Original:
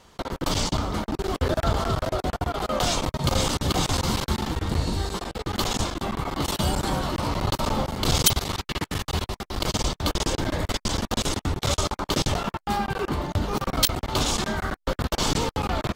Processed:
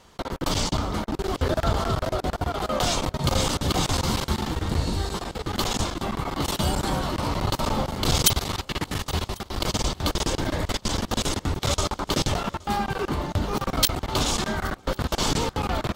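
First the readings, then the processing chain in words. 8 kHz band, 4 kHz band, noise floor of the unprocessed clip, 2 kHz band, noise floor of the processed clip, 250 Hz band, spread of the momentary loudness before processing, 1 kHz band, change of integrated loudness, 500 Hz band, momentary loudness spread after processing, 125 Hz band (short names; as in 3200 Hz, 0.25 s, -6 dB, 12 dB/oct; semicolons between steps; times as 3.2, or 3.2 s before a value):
0.0 dB, 0.0 dB, -63 dBFS, 0.0 dB, -48 dBFS, 0.0 dB, 6 LU, 0.0 dB, 0.0 dB, 0.0 dB, 6 LU, 0.0 dB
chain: swung echo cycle 1.095 s, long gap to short 3:1, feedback 50%, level -24 dB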